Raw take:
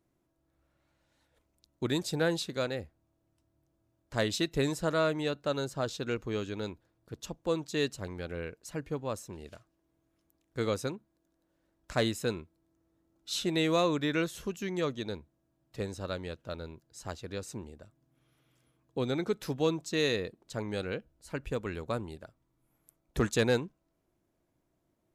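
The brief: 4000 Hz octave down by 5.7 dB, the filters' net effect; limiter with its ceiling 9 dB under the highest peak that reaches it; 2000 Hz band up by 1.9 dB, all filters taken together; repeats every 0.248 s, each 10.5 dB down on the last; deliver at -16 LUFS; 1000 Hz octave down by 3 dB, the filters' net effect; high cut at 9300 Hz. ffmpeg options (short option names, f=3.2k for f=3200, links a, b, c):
-af "lowpass=9.3k,equalizer=f=1k:t=o:g=-6,equalizer=f=2k:t=o:g=6.5,equalizer=f=4k:t=o:g=-8,alimiter=level_in=1dB:limit=-24dB:level=0:latency=1,volume=-1dB,aecho=1:1:248|496|744:0.299|0.0896|0.0269,volume=21.5dB"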